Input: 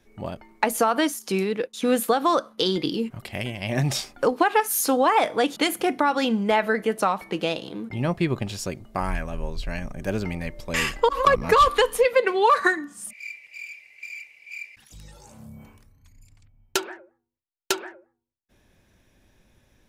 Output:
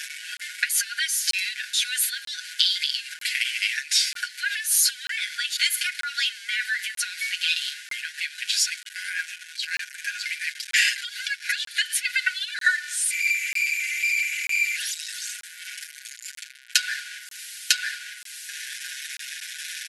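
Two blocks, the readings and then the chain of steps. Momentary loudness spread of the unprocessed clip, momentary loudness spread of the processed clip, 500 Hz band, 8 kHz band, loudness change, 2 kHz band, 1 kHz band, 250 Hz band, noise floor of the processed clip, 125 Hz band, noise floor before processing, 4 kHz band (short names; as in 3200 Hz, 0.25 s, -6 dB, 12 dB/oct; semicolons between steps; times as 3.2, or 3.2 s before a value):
18 LU, 13 LU, under -40 dB, +8.5 dB, -1.0 dB, +5.0 dB, under -15 dB, under -40 dB, -44 dBFS, under -40 dB, -69 dBFS, +7.5 dB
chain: zero-crossing step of -32 dBFS; comb 6.8 ms, depth 79%; dynamic EQ 4400 Hz, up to +5 dB, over -45 dBFS, Q 3.2; compressor 6:1, threshold -20 dBFS, peak gain reduction 12 dB; FFT band-pass 1400–12000 Hz; crackling interface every 0.94 s, samples 1024, zero, from 0.37; gain +6 dB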